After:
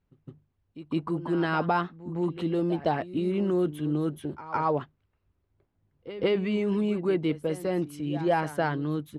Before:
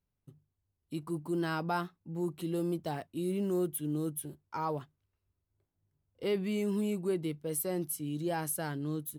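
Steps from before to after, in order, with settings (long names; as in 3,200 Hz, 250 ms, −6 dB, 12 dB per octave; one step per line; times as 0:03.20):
low-pass filter 2,700 Hz 12 dB per octave
harmonic and percussive parts rebalanced percussive +7 dB
backwards echo 160 ms −14.5 dB
level +5.5 dB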